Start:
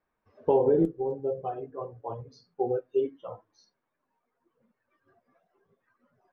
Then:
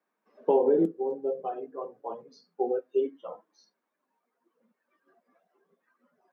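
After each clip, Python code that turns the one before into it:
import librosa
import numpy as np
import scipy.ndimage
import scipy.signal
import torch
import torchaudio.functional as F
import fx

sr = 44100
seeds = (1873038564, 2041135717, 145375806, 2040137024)

y = scipy.signal.sosfilt(scipy.signal.butter(8, 180.0, 'highpass', fs=sr, output='sos'), x)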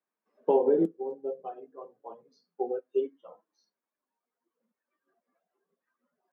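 y = fx.upward_expand(x, sr, threshold_db=-40.0, expansion=1.5)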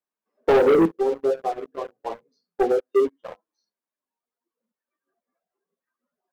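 y = fx.leveller(x, sr, passes=3)
y = y * 10.0 ** (2.0 / 20.0)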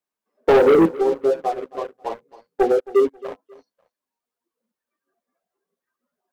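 y = fx.echo_feedback(x, sr, ms=270, feedback_pct=25, wet_db=-19)
y = y * 10.0 ** (3.0 / 20.0)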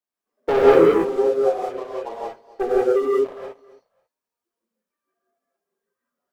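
y = fx.rev_gated(x, sr, seeds[0], gate_ms=210, shape='rising', drr_db=-5.0)
y = y * 10.0 ** (-6.5 / 20.0)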